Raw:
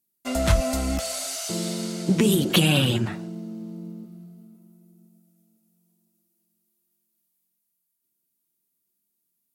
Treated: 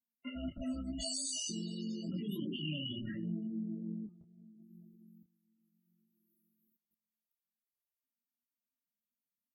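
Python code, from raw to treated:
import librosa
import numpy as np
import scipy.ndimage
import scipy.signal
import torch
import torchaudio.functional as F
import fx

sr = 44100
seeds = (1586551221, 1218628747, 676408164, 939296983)

p1 = (np.mod(10.0 ** (19.5 / 20.0) * x + 1.0, 2.0) - 1.0) / 10.0 ** (19.5 / 20.0)
p2 = x + (p1 * 10.0 ** (-5.0 / 20.0))
p3 = fx.peak_eq(p2, sr, hz=660.0, db=-12.5, octaves=1.1)
p4 = fx.notch(p3, sr, hz=500.0, q=12.0)
p5 = fx.over_compress(p4, sr, threshold_db=-28.0, ratio=-1.0)
p6 = fx.small_body(p5, sr, hz=(250.0, 560.0, 2900.0), ring_ms=35, db=10)
p7 = p6 + fx.echo_bbd(p6, sr, ms=110, stages=4096, feedback_pct=51, wet_db=-14.5, dry=0)
p8 = fx.spec_topn(p7, sr, count=16)
p9 = fx.low_shelf(p8, sr, hz=490.0, db=-8.0)
p10 = fx.level_steps(p9, sr, step_db=19)
p11 = fx.detune_double(p10, sr, cents=30)
y = p11 * 10.0 ** (2.5 / 20.0)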